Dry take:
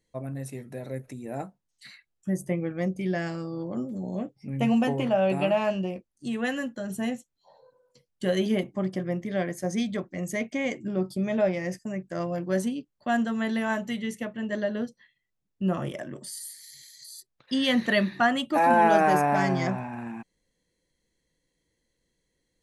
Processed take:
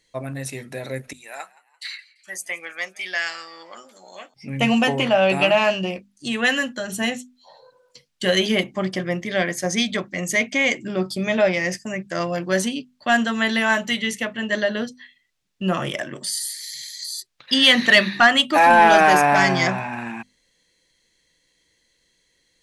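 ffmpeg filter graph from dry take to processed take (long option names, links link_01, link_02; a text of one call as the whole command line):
ffmpeg -i in.wav -filter_complex "[0:a]asettb=1/sr,asplit=3[link_01][link_02][link_03];[link_01]atrim=end=1.134[link_04];[link_02]atrim=start=1.13:end=4.34,asetpts=PTS-STARTPTS,afade=type=in:duration=0.004:curve=qsin,afade=type=out:start_time=3.206:duration=0.004:curve=qsin,highpass=1100,agate=range=-33dB:threshold=-60dB:ratio=3:release=100:detection=peak,asplit=4[link_05][link_06][link_07][link_08];[link_06]adelay=170,afreqshift=90,volume=-22dB[link_09];[link_07]adelay=340,afreqshift=180,volume=-28.9dB[link_10];[link_08]adelay=510,afreqshift=270,volume=-35.9dB[link_11];[link_05][link_09][link_10][link_11]amix=inputs=4:normalize=0,atrim=end_sample=141561[link_12];[link_03]atrim=start=4.336[link_13];[link_04][link_12]acrossfade=duration=0.004:curve1=hsin:curve2=qsin[link_14];[link_14][link_13]acrossfade=duration=0.004:curve1=qsin:curve2=hsin,equalizer=frequency=3600:width=0.31:gain=13.5,bandreject=frequency=50:width_type=h:width=6,bandreject=frequency=100:width_type=h:width=6,bandreject=frequency=150:width_type=h:width=6,bandreject=frequency=200:width_type=h:width=6,bandreject=frequency=250:width_type=h:width=6,acontrast=36,volume=-2.5dB" out.wav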